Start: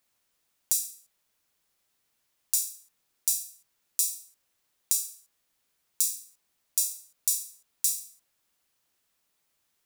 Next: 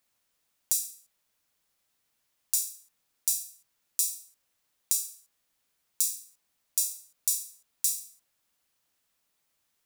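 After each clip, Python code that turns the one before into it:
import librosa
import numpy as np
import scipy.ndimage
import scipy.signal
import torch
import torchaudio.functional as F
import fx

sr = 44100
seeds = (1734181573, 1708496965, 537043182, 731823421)

y = fx.notch(x, sr, hz=380.0, q=12.0)
y = y * 10.0 ** (-1.0 / 20.0)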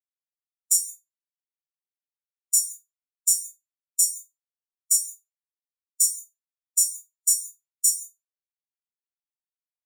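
y = fx.rev_gated(x, sr, seeds[0], gate_ms=200, shape='flat', drr_db=5.0)
y = fx.spectral_expand(y, sr, expansion=2.5)
y = y * 10.0 ** (-2.5 / 20.0)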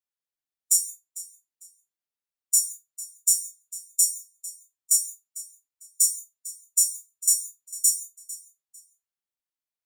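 y = fx.echo_feedback(x, sr, ms=450, feedback_pct=25, wet_db=-17.0)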